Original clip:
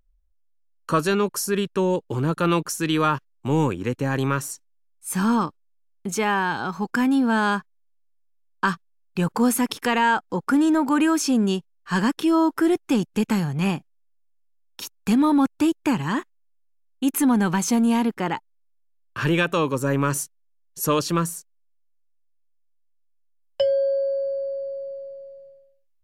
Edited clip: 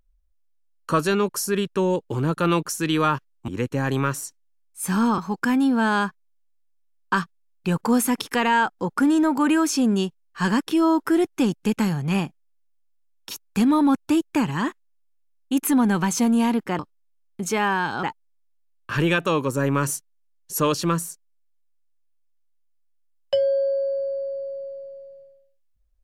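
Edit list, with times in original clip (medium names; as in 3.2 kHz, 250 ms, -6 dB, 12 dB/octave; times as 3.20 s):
3.48–3.75 s: delete
5.45–6.69 s: move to 18.30 s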